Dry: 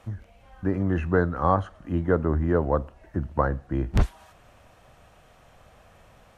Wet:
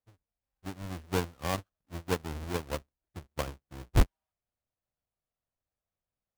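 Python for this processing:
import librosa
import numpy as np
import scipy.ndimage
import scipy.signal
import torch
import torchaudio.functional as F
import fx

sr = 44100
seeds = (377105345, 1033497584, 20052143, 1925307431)

y = fx.halfwave_hold(x, sr)
y = fx.upward_expand(y, sr, threshold_db=-36.0, expansion=2.5)
y = y * 10.0 ** (-5.5 / 20.0)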